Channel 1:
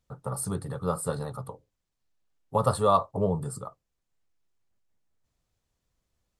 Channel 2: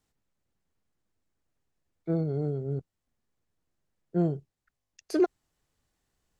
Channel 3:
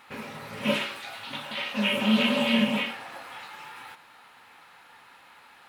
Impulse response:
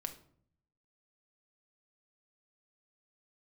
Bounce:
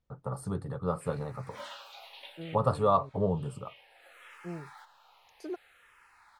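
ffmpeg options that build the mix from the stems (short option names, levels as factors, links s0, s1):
-filter_complex "[0:a]aemphasis=mode=reproduction:type=75fm,volume=0.708,asplit=2[s0][s1];[1:a]adelay=300,volume=0.188[s2];[2:a]highpass=f=430:w=0.5412,highpass=f=430:w=1.3066,asplit=2[s3][s4];[s4]afreqshift=-0.63[s5];[s3][s5]amix=inputs=2:normalize=1,adelay=900,volume=2.37,afade=t=out:st=1.8:d=0.68:silence=0.223872,afade=t=in:st=3.67:d=0.49:silence=0.281838[s6];[s1]apad=whole_len=290489[s7];[s6][s7]sidechaincompress=threshold=0.0158:ratio=8:attack=9.5:release=1110[s8];[s0][s2][s8]amix=inputs=3:normalize=0"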